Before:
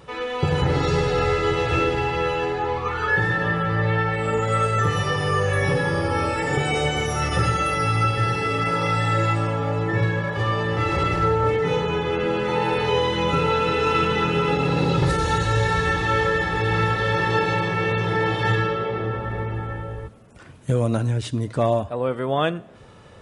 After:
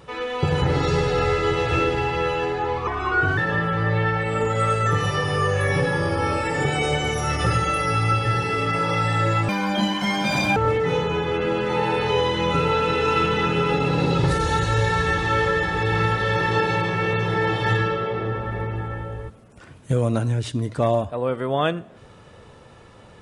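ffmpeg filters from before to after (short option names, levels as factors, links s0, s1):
-filter_complex "[0:a]asplit=5[s0][s1][s2][s3][s4];[s0]atrim=end=2.874[s5];[s1]atrim=start=2.87:end=3.3,asetpts=PTS-STARTPTS,asetrate=37485,aresample=44100,atrim=end_sample=22309,asetpts=PTS-STARTPTS[s6];[s2]atrim=start=3.296:end=9.414[s7];[s3]atrim=start=9.41:end=11.35,asetpts=PTS-STARTPTS,asetrate=79380,aresample=44100[s8];[s4]atrim=start=11.346[s9];[s5][s6]acrossfade=d=0.004:c1=hsin:c2=hsin[s10];[s10][s7]acrossfade=d=0.004:c1=hsin:c2=hsin[s11];[s11][s8]acrossfade=d=0.004:c1=hsin:c2=hsin[s12];[s12][s9]acrossfade=d=0.004:c1=hsin:c2=hsin"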